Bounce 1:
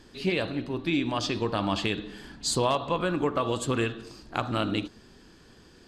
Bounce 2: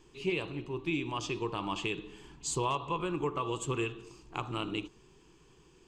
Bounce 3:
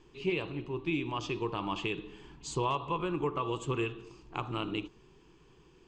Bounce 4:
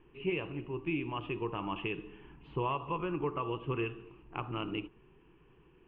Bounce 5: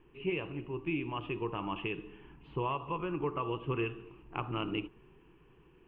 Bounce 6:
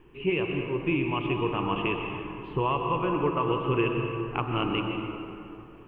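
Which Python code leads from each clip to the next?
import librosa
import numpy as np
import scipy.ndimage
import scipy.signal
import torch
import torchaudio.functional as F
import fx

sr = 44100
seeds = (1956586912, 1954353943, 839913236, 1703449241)

y1 = fx.ripple_eq(x, sr, per_octave=0.71, db=11)
y1 = y1 * librosa.db_to_amplitude(-8.5)
y2 = fx.air_absorb(y1, sr, metres=100.0)
y2 = y2 * librosa.db_to_amplitude(1.0)
y3 = scipy.signal.sosfilt(scipy.signal.cheby1(5, 1.0, 2900.0, 'lowpass', fs=sr, output='sos'), y2)
y3 = y3 * librosa.db_to_amplitude(-1.5)
y4 = fx.rider(y3, sr, range_db=10, speed_s=2.0)
y5 = fx.rev_plate(y4, sr, seeds[0], rt60_s=2.8, hf_ratio=0.55, predelay_ms=110, drr_db=3.0)
y5 = y5 * librosa.db_to_amplitude(7.0)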